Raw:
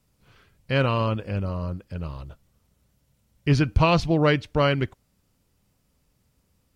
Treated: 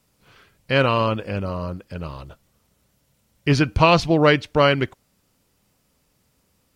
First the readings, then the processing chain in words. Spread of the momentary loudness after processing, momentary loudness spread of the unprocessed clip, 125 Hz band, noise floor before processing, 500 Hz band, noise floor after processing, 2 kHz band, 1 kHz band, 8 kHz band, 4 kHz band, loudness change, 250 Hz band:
17 LU, 14 LU, 0.0 dB, −69 dBFS, +5.0 dB, −67 dBFS, +6.0 dB, +5.5 dB, can't be measured, +6.0 dB, +4.5 dB, +3.0 dB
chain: low-shelf EQ 160 Hz −10 dB
level +6 dB

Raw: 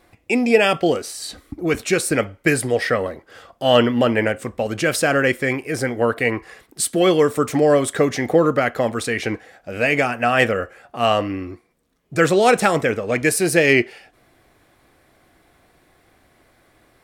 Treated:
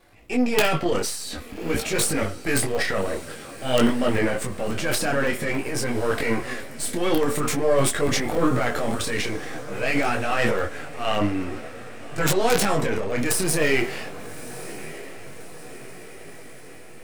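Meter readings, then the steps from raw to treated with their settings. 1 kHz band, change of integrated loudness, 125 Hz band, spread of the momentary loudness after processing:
−5.0 dB, −5.0 dB, −3.0 dB, 18 LU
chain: gain on one half-wave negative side −7 dB
transient designer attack −6 dB, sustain +11 dB
in parallel at 0 dB: downward compressor 8 to 1, threshold −27 dBFS, peak gain reduction 15.5 dB
on the sum: wrap-around overflow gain 4.5 dB
on a send: feedback delay with all-pass diffusion 1,207 ms, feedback 57%, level −15.5 dB
on the sum: regular buffer underruns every 0.28 s, samples 64, zero, from 0:00.79
micro pitch shift up and down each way 17 cents
level −1.5 dB

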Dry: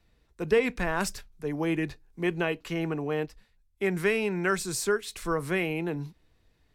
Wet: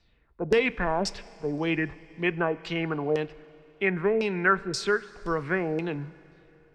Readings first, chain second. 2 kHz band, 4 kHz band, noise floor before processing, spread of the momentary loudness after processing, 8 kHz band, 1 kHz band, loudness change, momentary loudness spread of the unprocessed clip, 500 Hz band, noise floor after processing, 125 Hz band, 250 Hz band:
+3.0 dB, +2.0 dB, −68 dBFS, 10 LU, −6.0 dB, +4.0 dB, +1.5 dB, 10 LU, +1.5 dB, −62 dBFS, 0.0 dB, +0.5 dB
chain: auto-filter low-pass saw down 1.9 Hz 500–5,400 Hz
four-comb reverb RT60 3.1 s, combs from 32 ms, DRR 19 dB

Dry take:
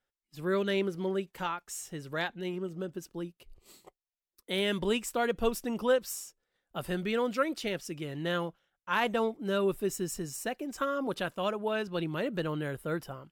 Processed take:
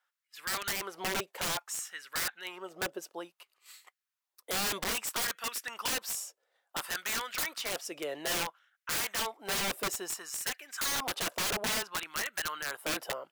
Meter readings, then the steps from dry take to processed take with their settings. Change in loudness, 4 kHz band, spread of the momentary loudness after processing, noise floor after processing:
−1.0 dB, +4.5 dB, 9 LU, below −85 dBFS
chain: auto-filter high-pass sine 0.59 Hz 570–1,700 Hz
wrap-around overflow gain 29.5 dB
level +3 dB

